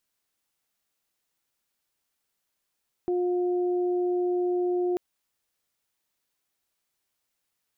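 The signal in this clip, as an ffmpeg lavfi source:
-f lavfi -i "aevalsrc='0.0708*sin(2*PI*357*t)+0.015*sin(2*PI*714*t)':d=1.89:s=44100"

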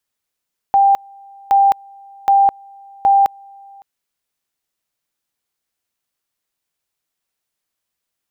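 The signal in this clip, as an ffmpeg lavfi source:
-f lavfi -i "aevalsrc='pow(10,(-8-29.5*gte(mod(t,0.77),0.21))/20)*sin(2*PI*792*t)':d=3.08:s=44100"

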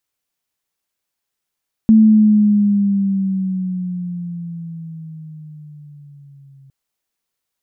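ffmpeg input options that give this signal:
-f lavfi -i "aevalsrc='pow(10,(-5-37*t/4.81)/20)*sin(2*PI*221*4.81/(-8.5*log(2)/12)*(exp(-8.5*log(2)/12*t/4.81)-1))':d=4.81:s=44100"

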